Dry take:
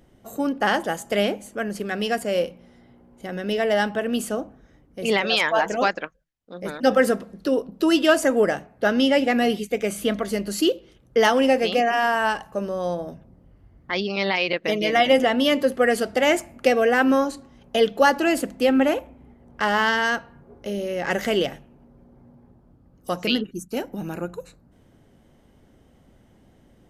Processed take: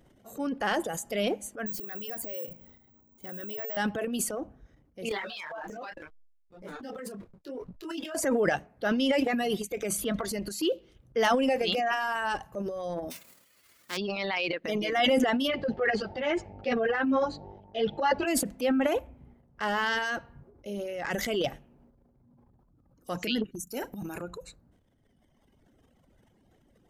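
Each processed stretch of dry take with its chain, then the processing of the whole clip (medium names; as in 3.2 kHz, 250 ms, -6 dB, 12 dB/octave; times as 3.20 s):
1.66–3.77 s: careless resampling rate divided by 2×, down none, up zero stuff + compression 3:1, threshold -27 dBFS
5.09–8.15 s: hysteresis with a dead band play -34.5 dBFS + compression 10:1, threshold -24 dBFS + detune thickener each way 25 cents
13.10–13.96 s: formants flattened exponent 0.3 + high-pass 280 Hz 6 dB/octave + peaking EQ 770 Hz -6.5 dB 0.29 oct
15.47–18.26 s: low-pass 4.6 kHz 24 dB/octave + mains buzz 50 Hz, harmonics 18, -38 dBFS -1 dB/octave + three-phase chorus
23.63–24.23 s: treble shelf 4.9 kHz +8 dB + doubling 40 ms -12.5 dB
whole clip: reverb removal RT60 1.9 s; transient shaper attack -3 dB, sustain +11 dB; trim -6.5 dB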